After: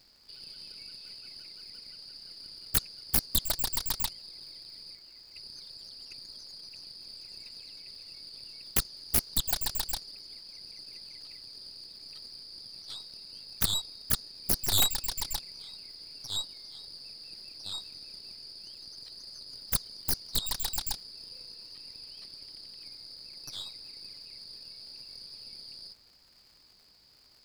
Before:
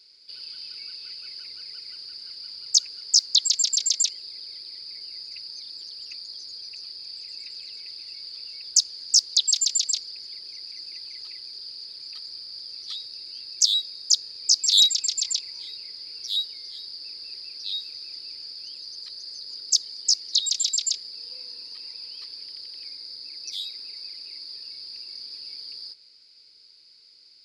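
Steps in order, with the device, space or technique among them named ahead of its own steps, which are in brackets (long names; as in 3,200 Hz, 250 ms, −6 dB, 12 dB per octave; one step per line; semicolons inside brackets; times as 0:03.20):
0:04.95–0:05.35: high-shelf EQ 4,400 Hz −11.5 dB
record under a worn stylus (stylus tracing distortion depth 0.19 ms; surface crackle 130 per second −42 dBFS; pink noise bed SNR 33 dB)
level −7.5 dB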